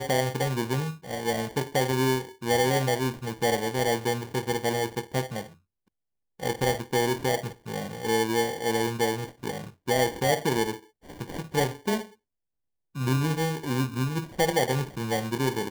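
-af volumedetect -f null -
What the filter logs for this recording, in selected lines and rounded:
mean_volume: -27.9 dB
max_volume: -14.1 dB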